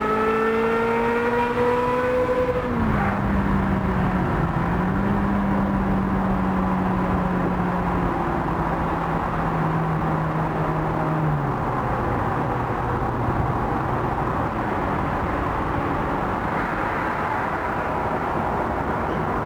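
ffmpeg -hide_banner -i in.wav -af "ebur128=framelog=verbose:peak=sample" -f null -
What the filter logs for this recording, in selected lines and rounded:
Integrated loudness:
  I:         -22.9 LUFS
  Threshold: -32.9 LUFS
Loudness range:
  LRA:         2.5 LU
  Threshold: -43.0 LUFS
  LRA low:   -24.0 LUFS
  LRA high:  -21.5 LUFS
Sample peak:
  Peak:       -9.1 dBFS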